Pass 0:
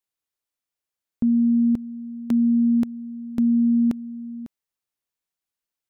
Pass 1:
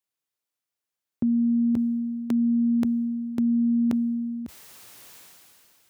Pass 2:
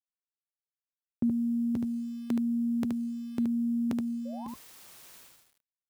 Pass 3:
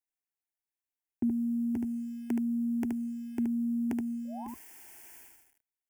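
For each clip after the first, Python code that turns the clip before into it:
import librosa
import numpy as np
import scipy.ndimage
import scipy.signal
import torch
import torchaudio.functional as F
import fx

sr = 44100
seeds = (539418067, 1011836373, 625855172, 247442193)

y1 = scipy.signal.sosfilt(scipy.signal.butter(4, 80.0, 'highpass', fs=sr, output='sos'), x)
y1 = fx.dynamic_eq(y1, sr, hz=200.0, q=1.1, threshold_db=-30.0, ratio=4.0, max_db=-4)
y1 = fx.sustainer(y1, sr, db_per_s=21.0)
y2 = np.where(np.abs(y1) >= 10.0 ** (-45.5 / 20.0), y1, 0.0)
y2 = fx.spec_paint(y2, sr, seeds[0], shape='rise', start_s=4.25, length_s=0.23, low_hz=510.0, high_hz=1100.0, level_db=-41.0)
y2 = y2 + 10.0 ** (-4.0 / 20.0) * np.pad(y2, (int(74 * sr / 1000.0), 0))[:len(y2)]
y2 = y2 * librosa.db_to_amplitude(-3.5)
y3 = fx.fixed_phaser(y2, sr, hz=800.0, stages=8)
y3 = y3 * librosa.db_to_amplitude(2.0)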